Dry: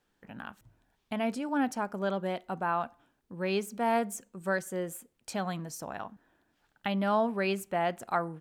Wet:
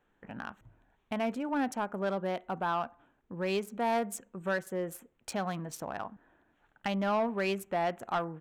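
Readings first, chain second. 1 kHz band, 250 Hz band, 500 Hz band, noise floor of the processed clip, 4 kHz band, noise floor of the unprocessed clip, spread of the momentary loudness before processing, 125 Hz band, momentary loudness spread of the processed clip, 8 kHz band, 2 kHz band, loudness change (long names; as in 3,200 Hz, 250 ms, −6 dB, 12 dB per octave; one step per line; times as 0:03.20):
−1.0 dB, −2.0 dB, −1.0 dB, −73 dBFS, −1.0 dB, −76 dBFS, 15 LU, −1.5 dB, 13 LU, −2.5 dB, −1.5 dB, −1.5 dB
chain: adaptive Wiener filter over 9 samples
parametric band 160 Hz −3 dB 2.4 octaves
in parallel at −2.5 dB: downward compressor, threshold −42 dBFS, peak gain reduction 17 dB
on the sum: soft clipping −22 dBFS, distortion −18 dB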